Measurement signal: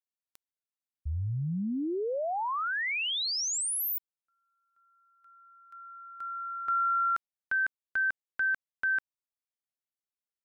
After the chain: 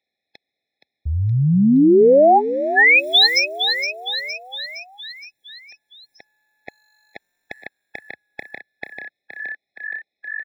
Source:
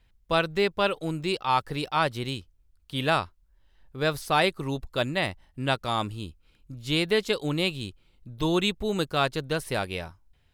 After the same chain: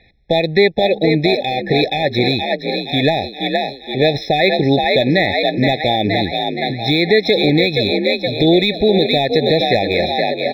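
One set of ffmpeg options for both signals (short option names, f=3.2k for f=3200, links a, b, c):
-filter_complex "[0:a]highpass=f=280:p=1,asplit=7[a][b][c][d][e][f][g];[b]adelay=470,afreqshift=48,volume=-9.5dB[h];[c]adelay=940,afreqshift=96,volume=-14.7dB[i];[d]adelay=1410,afreqshift=144,volume=-19.9dB[j];[e]adelay=1880,afreqshift=192,volume=-25.1dB[k];[f]adelay=2350,afreqshift=240,volume=-30.3dB[l];[g]adelay=2820,afreqshift=288,volume=-35.5dB[m];[a][h][i][j][k][l][m]amix=inputs=7:normalize=0,aresample=11025,aresample=44100,acrossover=split=4100[n][o];[o]acrusher=bits=5:mode=log:mix=0:aa=0.000001[p];[n][p]amix=inputs=2:normalize=0,acompressor=threshold=-29dB:ratio=4:attack=1.1:release=143:knee=1:detection=peak,apsyclip=25.5dB,afftfilt=real='re*eq(mod(floor(b*sr/1024/850),2),0)':imag='im*eq(mod(floor(b*sr/1024/850),2),0)':win_size=1024:overlap=0.75,volume=-3.5dB"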